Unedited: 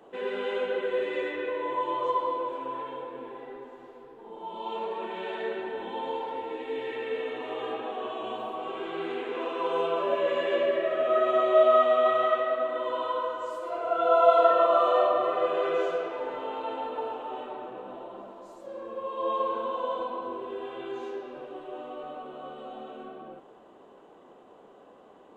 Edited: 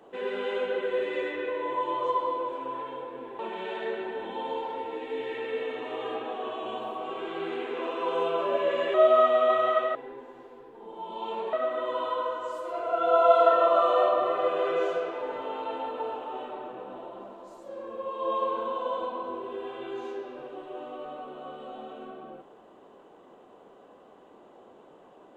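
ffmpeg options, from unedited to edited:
-filter_complex "[0:a]asplit=5[a][b][c][d][e];[a]atrim=end=3.392[f];[b]atrim=start=4.968:end=10.522[g];[c]atrim=start=11.498:end=12.512[h];[d]atrim=start=3.388:end=4.972[i];[e]atrim=start=12.508[j];[f][g]acrossfade=d=0.004:c1=hsin:c2=hsin[k];[k][h]acrossfade=d=0.004:c1=hsin:c2=hsin[l];[l][i]acrossfade=d=0.004:c1=hsin:c2=hsin[m];[m][j]acrossfade=d=0.004:c1=hsin:c2=hsin"

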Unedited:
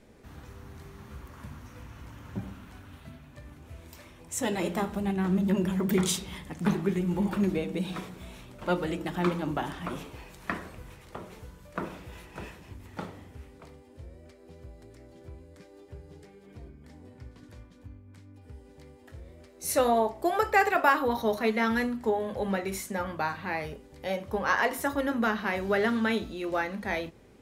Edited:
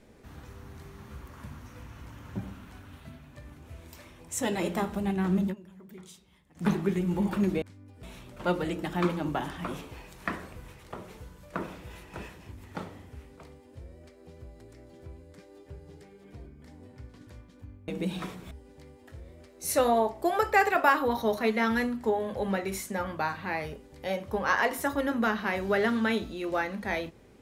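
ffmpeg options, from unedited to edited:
-filter_complex "[0:a]asplit=7[a][b][c][d][e][f][g];[a]atrim=end=5.55,asetpts=PTS-STARTPTS,afade=t=out:st=5.4:d=0.15:c=qsin:silence=0.0749894[h];[b]atrim=start=5.55:end=6.54,asetpts=PTS-STARTPTS,volume=-22.5dB[i];[c]atrim=start=6.54:end=7.622,asetpts=PTS-STARTPTS,afade=t=in:d=0.15:c=qsin:silence=0.0749894[j];[d]atrim=start=18.098:end=18.512[k];[e]atrim=start=8.248:end=18.102[l];[f]atrim=start=7.618:end=8.252[m];[g]atrim=start=18.508[n];[h][i][j]concat=n=3:v=0:a=1[o];[o][k]acrossfade=d=0.004:c1=hsin:c2=hsin[p];[p][l]acrossfade=d=0.004:c1=hsin:c2=hsin[q];[q][m]acrossfade=d=0.004:c1=hsin:c2=hsin[r];[r][n]acrossfade=d=0.004:c1=hsin:c2=hsin"

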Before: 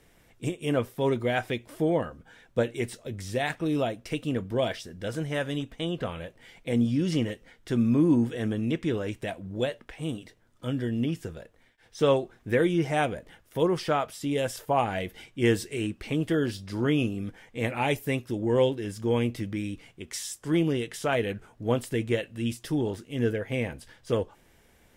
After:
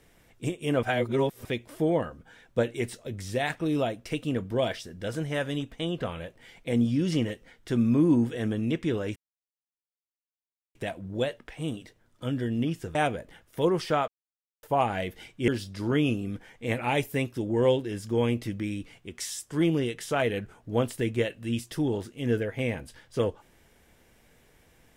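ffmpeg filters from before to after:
-filter_complex "[0:a]asplit=8[a][b][c][d][e][f][g][h];[a]atrim=end=0.832[i];[b]atrim=start=0.828:end=1.452,asetpts=PTS-STARTPTS,areverse[j];[c]atrim=start=1.448:end=9.16,asetpts=PTS-STARTPTS,afade=t=out:st=7.708:d=0.004:c=hsin,apad=pad_dur=1.59[k];[d]atrim=start=9.16:end=11.362,asetpts=PTS-STARTPTS,afade=t=in:d=0.004:c=hsin[l];[e]atrim=start=12.928:end=14.06,asetpts=PTS-STARTPTS,afade=t=out:st=1.128:d=0.004:c=hsin[m];[f]atrim=start=14.06:end=14.61,asetpts=PTS-STARTPTS,volume=0[n];[g]atrim=start=14.61:end=15.462,asetpts=PTS-STARTPTS,afade=t=in:d=0.004:c=hsin[o];[h]atrim=start=16.408[p];[i][j]acrossfade=d=0.004:c1=hsin:c2=hsin[q];[k][l]concat=n=2:v=0:a=1[r];[q][r]acrossfade=d=0.004:c1=hsin:c2=hsin[s];[m][n][o]concat=n=3:v=0:a=1[t];[s][t]acrossfade=d=0.004:c1=hsin:c2=hsin[u];[u][p]acrossfade=d=0.004:c1=hsin:c2=hsin"

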